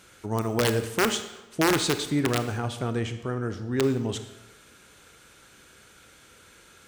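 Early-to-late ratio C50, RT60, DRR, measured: 10.5 dB, 1.0 s, 9.0 dB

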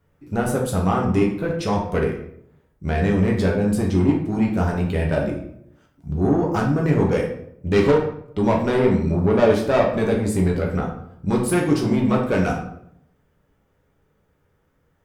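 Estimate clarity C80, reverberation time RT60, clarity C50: 9.5 dB, 0.70 s, 5.5 dB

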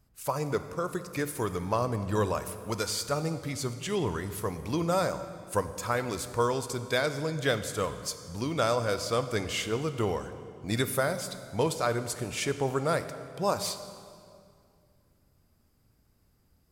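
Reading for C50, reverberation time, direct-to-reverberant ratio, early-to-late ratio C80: 11.0 dB, 2.3 s, 10.0 dB, 12.0 dB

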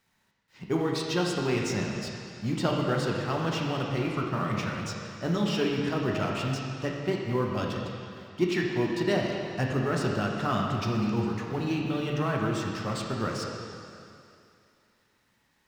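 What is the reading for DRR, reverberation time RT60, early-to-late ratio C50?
−1.0 dB, 2.6 s, 1.0 dB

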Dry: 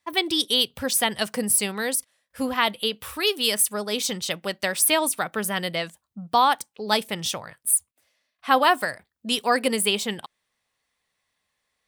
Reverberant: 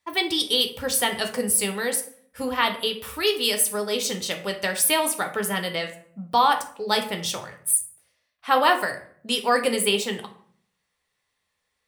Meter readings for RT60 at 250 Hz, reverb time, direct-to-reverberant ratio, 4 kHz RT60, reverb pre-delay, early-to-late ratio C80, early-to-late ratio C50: 0.75 s, 0.55 s, 5.0 dB, 0.35 s, 10 ms, 14.5 dB, 10.5 dB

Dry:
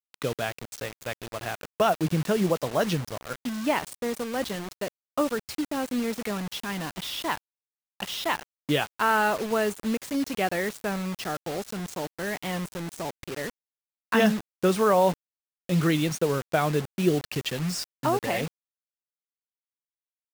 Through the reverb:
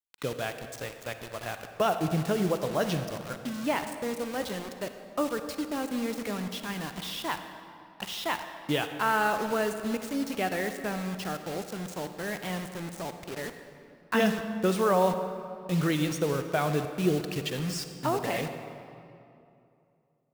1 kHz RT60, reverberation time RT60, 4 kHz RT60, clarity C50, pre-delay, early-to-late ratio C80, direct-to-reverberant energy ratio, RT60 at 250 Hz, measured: 2.6 s, 2.7 s, 1.7 s, 8.0 dB, 38 ms, 9.0 dB, 7.5 dB, 2.8 s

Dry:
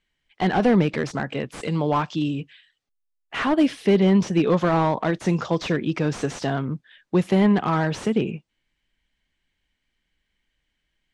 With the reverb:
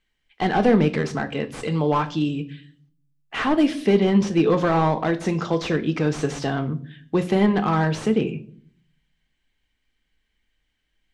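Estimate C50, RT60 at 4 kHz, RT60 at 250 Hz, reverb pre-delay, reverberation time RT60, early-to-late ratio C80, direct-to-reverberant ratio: 16.5 dB, 0.40 s, 0.80 s, 3 ms, 0.50 s, 20.0 dB, 8.5 dB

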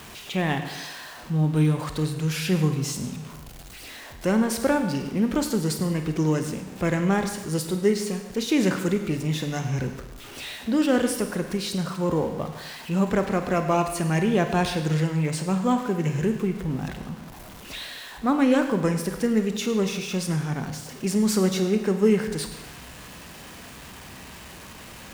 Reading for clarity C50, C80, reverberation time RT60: 7.5 dB, 9.0 dB, 0.95 s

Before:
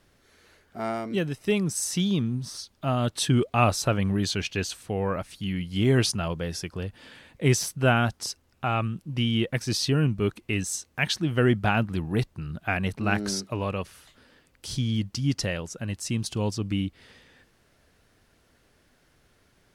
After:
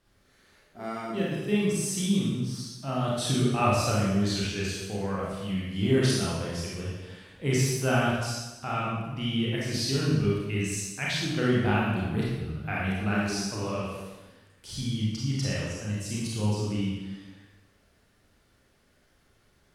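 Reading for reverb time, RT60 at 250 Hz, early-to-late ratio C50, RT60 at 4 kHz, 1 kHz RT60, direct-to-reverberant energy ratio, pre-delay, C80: 1.1 s, 1.3 s, −2.0 dB, 1.0 s, 1.1 s, −6.0 dB, 27 ms, 1.5 dB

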